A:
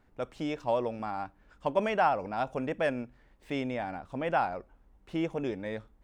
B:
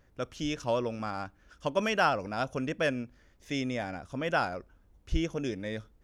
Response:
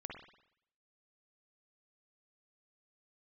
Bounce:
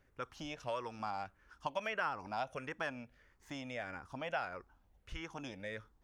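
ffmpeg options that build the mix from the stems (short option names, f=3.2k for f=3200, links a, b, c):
-filter_complex "[0:a]highpass=470,asplit=2[a][b];[b]afreqshift=-1.6[c];[a][c]amix=inputs=2:normalize=1,volume=-3dB[d];[1:a]volume=-8dB[e];[d][e]amix=inputs=2:normalize=0,acrossover=split=780|2200[f][g][h];[f]acompressor=threshold=-44dB:ratio=4[i];[g]acompressor=threshold=-36dB:ratio=4[j];[h]acompressor=threshold=-50dB:ratio=4[k];[i][j][k]amix=inputs=3:normalize=0"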